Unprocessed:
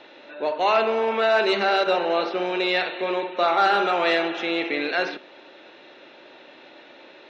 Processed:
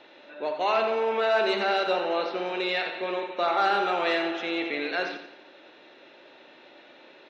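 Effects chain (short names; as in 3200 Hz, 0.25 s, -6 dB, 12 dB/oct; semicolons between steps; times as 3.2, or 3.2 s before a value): feedback echo 87 ms, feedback 44%, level -9 dB; gain -5 dB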